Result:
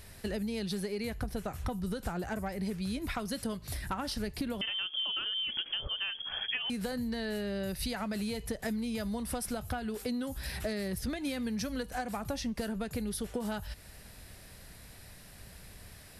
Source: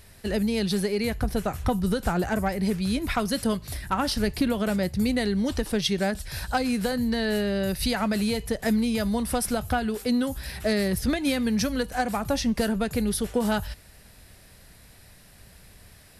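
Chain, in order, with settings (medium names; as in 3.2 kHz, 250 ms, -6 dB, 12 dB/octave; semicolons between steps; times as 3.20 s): compression 4:1, threshold -34 dBFS, peak gain reduction 12.5 dB; 4.61–6.70 s: frequency inversion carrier 3.3 kHz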